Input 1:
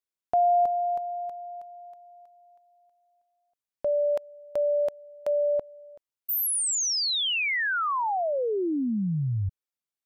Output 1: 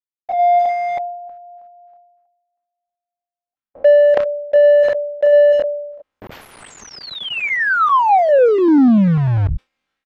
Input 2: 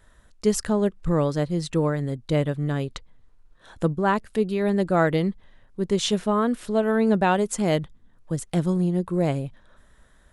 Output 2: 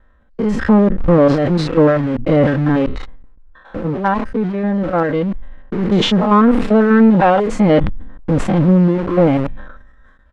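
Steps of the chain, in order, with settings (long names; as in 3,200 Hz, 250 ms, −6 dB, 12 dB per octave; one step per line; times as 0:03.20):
spectrum averaged block by block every 100 ms
reverb reduction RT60 1.5 s
noise gate with hold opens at −56 dBFS, closes at −58 dBFS, hold 15 ms, range −18 dB
comb filter 3.8 ms, depth 46%
in parallel at −8 dB: log-companded quantiser 2 bits
on the sum: automatic gain control gain up to 11 dB
soft clipping −2.5 dBFS
low-pass filter 1,900 Hz 12 dB per octave
level that may fall only so fast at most 54 dB per second
level +2.5 dB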